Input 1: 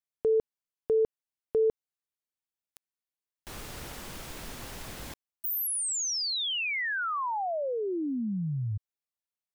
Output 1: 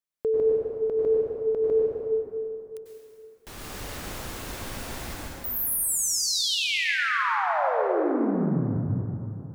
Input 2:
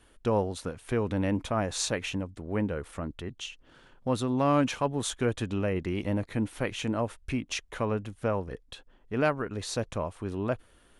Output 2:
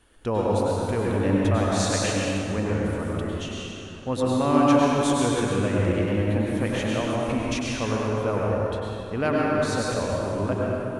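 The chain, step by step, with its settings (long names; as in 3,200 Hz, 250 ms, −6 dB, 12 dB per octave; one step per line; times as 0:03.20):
dense smooth reverb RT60 3 s, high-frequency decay 0.6×, pre-delay 85 ms, DRR −5 dB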